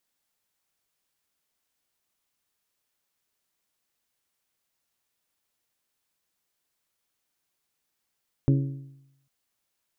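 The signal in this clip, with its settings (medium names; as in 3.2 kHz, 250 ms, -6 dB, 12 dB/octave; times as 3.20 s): metal hit bell, length 0.80 s, lowest mode 137 Hz, modes 5, decay 0.85 s, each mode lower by 5.5 dB, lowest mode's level -16 dB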